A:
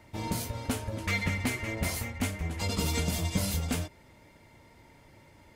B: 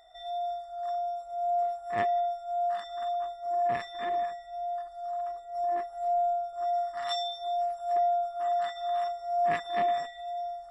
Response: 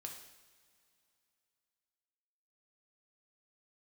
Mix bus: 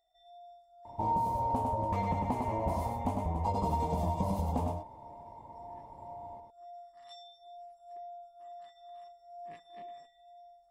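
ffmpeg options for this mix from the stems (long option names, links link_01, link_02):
-filter_complex "[0:a]firequalizer=gain_entry='entry(380,0);entry(930,15);entry(1400,-17)':delay=0.05:min_phase=1,adelay=850,volume=-0.5dB,asplit=2[link_01][link_02];[link_02]volume=-5.5dB[link_03];[1:a]equalizer=frequency=1400:width_type=o:width=1:gain=-12.5,volume=-18dB,asplit=2[link_04][link_05];[link_05]volume=-17dB[link_06];[2:a]atrim=start_sample=2205[link_07];[link_06][link_07]afir=irnorm=-1:irlink=0[link_08];[link_03]aecho=0:1:102:1[link_09];[link_01][link_04][link_08][link_09]amix=inputs=4:normalize=0,acompressor=threshold=-27dB:ratio=6"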